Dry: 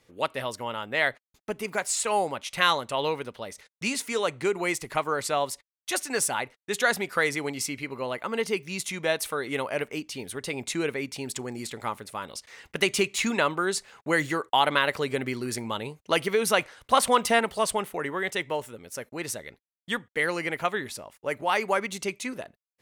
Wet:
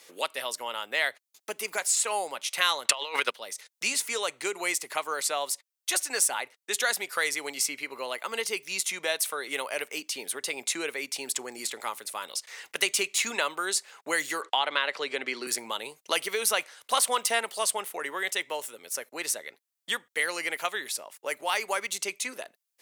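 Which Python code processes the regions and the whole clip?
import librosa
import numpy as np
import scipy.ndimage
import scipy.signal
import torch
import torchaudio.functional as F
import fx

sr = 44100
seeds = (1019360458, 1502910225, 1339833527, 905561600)

y = fx.chain(x, sr, fx.over_compress(threshold_db=-35.0, ratio=-1.0),
    fx.peak_eq(hz=2200.0, db=12.5, octaves=3.0),
    fx.transient(attack_db=9, sustain_db=-10), at=(2.85, 3.31))
y = fx.chain(y, sr, fx.bandpass_edges(low_hz=160.0, high_hz=4000.0),
    fx.band_squash(depth_pct=40), at=(14.42, 15.47))
y = scipy.signal.sosfilt(scipy.signal.butter(2, 440.0, 'highpass', fs=sr, output='sos'), y)
y = fx.high_shelf(y, sr, hz=3400.0, db=11.5)
y = fx.band_squash(y, sr, depth_pct=40)
y = F.gain(torch.from_numpy(y), -4.5).numpy()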